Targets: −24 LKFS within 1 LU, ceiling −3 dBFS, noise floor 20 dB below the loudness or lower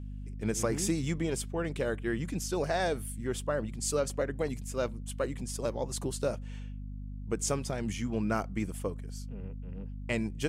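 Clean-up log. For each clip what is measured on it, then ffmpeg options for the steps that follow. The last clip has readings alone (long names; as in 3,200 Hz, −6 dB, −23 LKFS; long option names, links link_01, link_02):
mains hum 50 Hz; hum harmonics up to 250 Hz; level of the hum −38 dBFS; integrated loudness −34.0 LKFS; sample peak −16.0 dBFS; target loudness −24.0 LKFS
→ -af "bandreject=frequency=50:width_type=h:width=4,bandreject=frequency=100:width_type=h:width=4,bandreject=frequency=150:width_type=h:width=4,bandreject=frequency=200:width_type=h:width=4,bandreject=frequency=250:width_type=h:width=4"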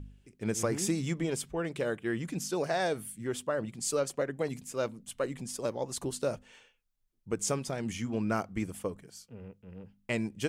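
mains hum none found; integrated loudness −33.5 LKFS; sample peak −16.5 dBFS; target loudness −24.0 LKFS
→ -af "volume=9.5dB"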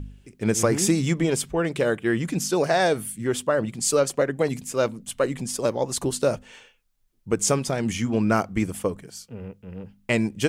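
integrated loudness −24.0 LKFS; sample peak −7.0 dBFS; background noise floor −63 dBFS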